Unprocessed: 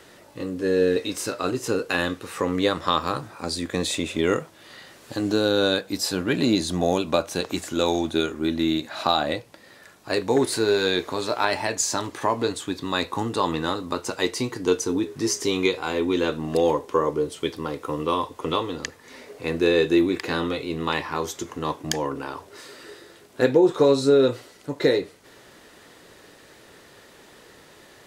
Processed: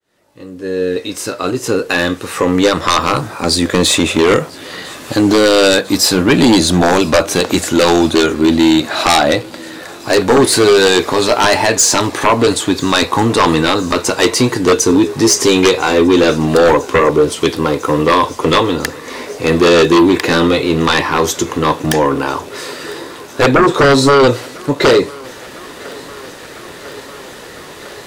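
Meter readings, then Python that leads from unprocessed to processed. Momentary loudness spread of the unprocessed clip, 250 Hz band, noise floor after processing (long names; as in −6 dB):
10 LU, +12.0 dB, −33 dBFS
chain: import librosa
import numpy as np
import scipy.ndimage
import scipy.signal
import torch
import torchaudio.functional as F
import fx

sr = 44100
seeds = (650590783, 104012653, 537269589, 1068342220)

p1 = fx.fade_in_head(x, sr, length_s=3.43)
p2 = fx.fold_sine(p1, sr, drive_db=12, ceiling_db=-4.5)
y = p2 + fx.echo_thinned(p2, sr, ms=1001, feedback_pct=82, hz=210.0, wet_db=-23.0, dry=0)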